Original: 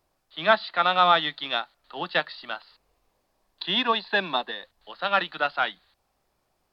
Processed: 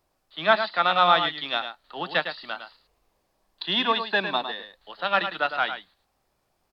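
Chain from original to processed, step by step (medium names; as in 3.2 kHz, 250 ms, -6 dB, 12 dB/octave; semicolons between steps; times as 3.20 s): delay 106 ms -9 dB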